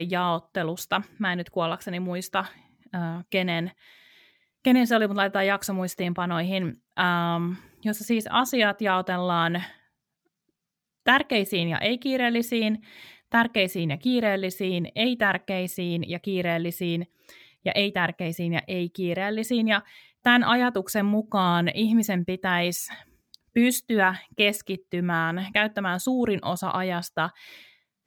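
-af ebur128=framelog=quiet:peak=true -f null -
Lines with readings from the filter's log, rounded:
Integrated loudness:
  I:         -25.2 LUFS
  Threshold: -35.6 LUFS
Loudness range:
  LRA:         4.1 LU
  Threshold: -45.6 LUFS
  LRA low:   -27.7 LUFS
  LRA high:  -23.6 LUFS
True peak:
  Peak:       -6.5 dBFS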